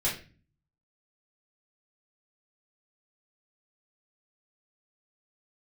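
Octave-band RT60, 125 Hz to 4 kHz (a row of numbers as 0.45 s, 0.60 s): 0.80 s, 0.65 s, 0.40 s, 0.30 s, 0.40 s, 0.35 s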